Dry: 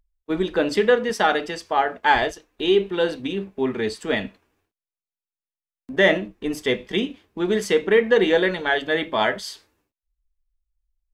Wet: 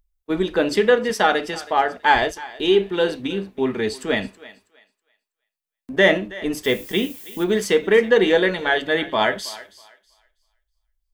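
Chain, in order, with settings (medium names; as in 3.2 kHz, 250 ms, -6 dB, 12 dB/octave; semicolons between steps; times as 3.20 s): treble shelf 10 kHz +6 dB; 6.63–7.43 s: added noise violet -42 dBFS; thinning echo 323 ms, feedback 26%, high-pass 540 Hz, level -17.5 dB; trim +1.5 dB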